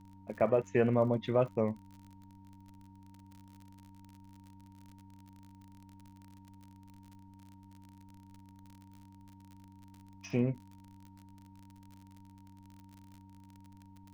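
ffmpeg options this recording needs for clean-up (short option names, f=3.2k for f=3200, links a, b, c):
-af "adeclick=t=4,bandreject=f=96.6:t=h:w=4,bandreject=f=193.2:t=h:w=4,bandreject=f=289.8:t=h:w=4,bandreject=f=930:w=30,agate=range=-21dB:threshold=-48dB"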